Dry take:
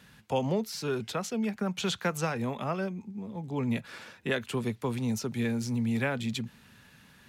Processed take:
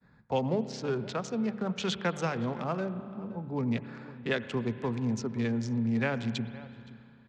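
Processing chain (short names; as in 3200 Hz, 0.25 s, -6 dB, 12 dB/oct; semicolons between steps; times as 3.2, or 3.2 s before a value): Wiener smoothing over 15 samples; LPF 6700 Hz 24 dB/oct; outdoor echo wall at 89 m, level -18 dB; expander -55 dBFS; notches 50/100/150/200 Hz; on a send at -13 dB: reverb RT60 2.4 s, pre-delay 78 ms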